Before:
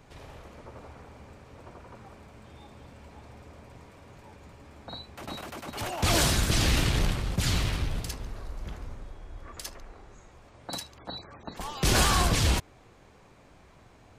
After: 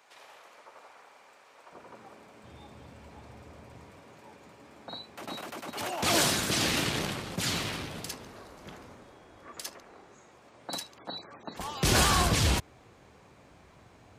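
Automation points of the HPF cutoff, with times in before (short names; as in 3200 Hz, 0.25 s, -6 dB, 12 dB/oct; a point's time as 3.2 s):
770 Hz
from 1.72 s 240 Hz
from 2.44 s 75 Hz
from 4.01 s 190 Hz
from 11.55 s 62 Hz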